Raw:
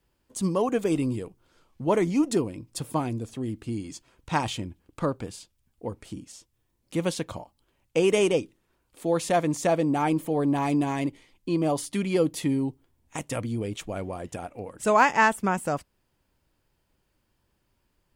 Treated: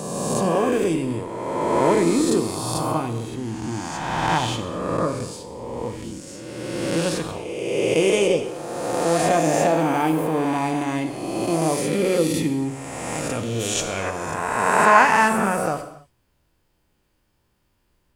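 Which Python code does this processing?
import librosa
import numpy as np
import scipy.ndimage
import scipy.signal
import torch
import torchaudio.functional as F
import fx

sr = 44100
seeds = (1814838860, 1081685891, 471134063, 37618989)

y = fx.spec_swells(x, sr, rise_s=2.1)
y = fx.peak_eq(y, sr, hz=fx.line((13.59, 13000.0), (14.09, 1900.0)), db=14.0, octaves=1.6, at=(13.59, 14.09), fade=0.02)
y = fx.rev_gated(y, sr, seeds[0], gate_ms=310, shape='falling', drr_db=6.5)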